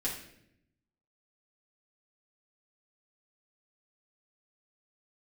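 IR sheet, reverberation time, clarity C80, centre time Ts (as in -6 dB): 0.75 s, 9.0 dB, 30 ms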